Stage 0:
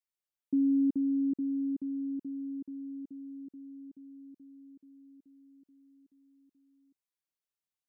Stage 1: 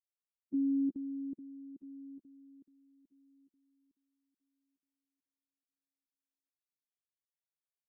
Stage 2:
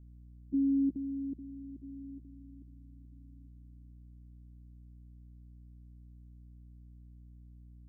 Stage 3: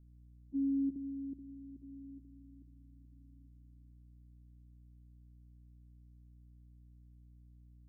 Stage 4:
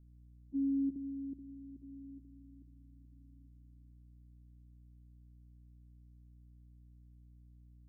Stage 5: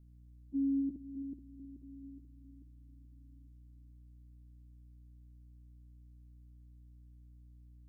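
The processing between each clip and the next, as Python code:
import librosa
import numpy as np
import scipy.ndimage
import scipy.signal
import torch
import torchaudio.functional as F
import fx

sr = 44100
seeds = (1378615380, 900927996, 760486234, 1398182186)

y1 = fx.bin_expand(x, sr, power=2.0)
y1 = fx.level_steps(y1, sr, step_db=9)
y1 = y1 * librosa.db_to_amplitude(-3.0)
y2 = fx.add_hum(y1, sr, base_hz=60, snr_db=17)
y2 = fx.low_shelf(y2, sr, hz=240.0, db=9.5)
y2 = y2 * librosa.db_to_amplitude(-1.5)
y3 = fx.room_shoebox(y2, sr, seeds[0], volume_m3=3100.0, walls='furnished', distance_m=0.38)
y3 = fx.attack_slew(y3, sr, db_per_s=540.0)
y3 = y3 * librosa.db_to_amplitude(-6.0)
y4 = y3
y5 = y4 + 10.0 ** (-10.5 / 20.0) * np.pad(y4, (int(264 * sr / 1000.0), 0))[:len(y4)]
y5 = y5 * librosa.db_to_amplitude(1.0)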